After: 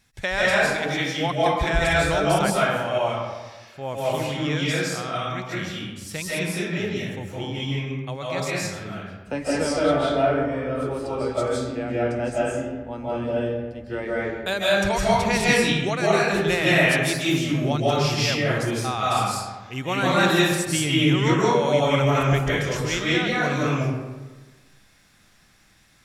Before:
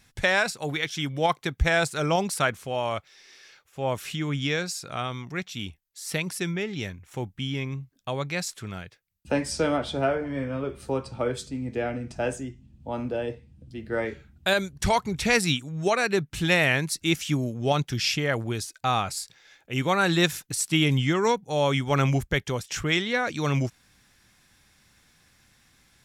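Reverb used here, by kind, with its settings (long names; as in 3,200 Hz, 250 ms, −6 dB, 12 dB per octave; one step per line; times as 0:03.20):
comb and all-pass reverb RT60 1.3 s, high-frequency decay 0.55×, pre-delay 120 ms, DRR −7.5 dB
level −4 dB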